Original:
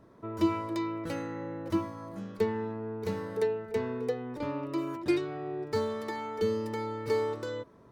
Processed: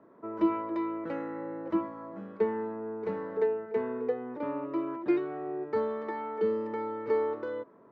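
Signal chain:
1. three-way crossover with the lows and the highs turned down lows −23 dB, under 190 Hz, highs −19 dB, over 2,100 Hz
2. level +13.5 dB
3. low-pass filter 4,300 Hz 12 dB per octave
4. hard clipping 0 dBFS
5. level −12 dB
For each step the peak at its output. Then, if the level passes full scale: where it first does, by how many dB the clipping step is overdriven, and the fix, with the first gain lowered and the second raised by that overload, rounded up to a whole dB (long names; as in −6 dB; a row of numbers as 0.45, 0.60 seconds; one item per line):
−16.5, −3.0, −3.0, −3.0, −15.0 dBFS
no step passes full scale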